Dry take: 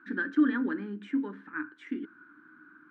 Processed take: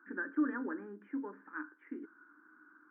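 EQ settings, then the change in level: Gaussian blur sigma 6 samples; HPF 480 Hz 12 dB/oct; +1.0 dB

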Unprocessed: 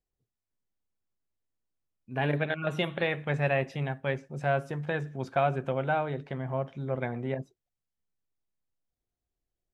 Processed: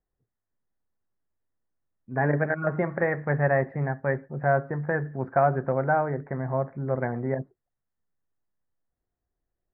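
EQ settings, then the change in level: elliptic low-pass 1900 Hz, stop band 40 dB; +5.0 dB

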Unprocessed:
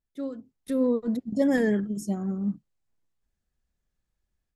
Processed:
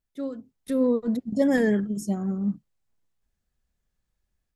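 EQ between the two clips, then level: bell 320 Hz -2.5 dB 0.32 oct; +2.0 dB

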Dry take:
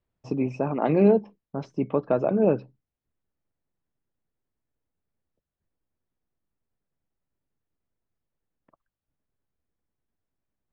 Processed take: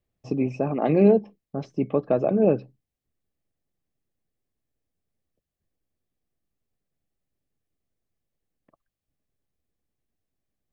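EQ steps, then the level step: bell 1400 Hz -7.5 dB 0.3 oct; notch 950 Hz, Q 5; +1.5 dB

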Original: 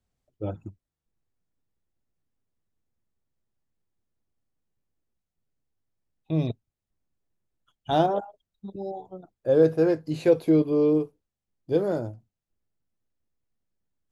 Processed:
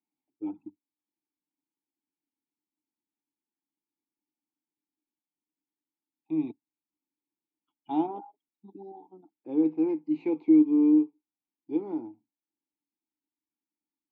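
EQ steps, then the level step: vowel filter u; HPF 190 Hz 12 dB/oct; air absorption 140 m; +5.5 dB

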